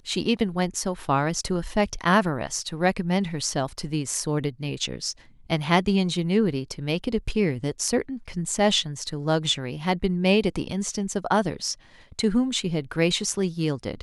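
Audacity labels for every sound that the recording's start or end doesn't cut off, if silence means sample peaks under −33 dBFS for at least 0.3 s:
5.500000	11.740000	sound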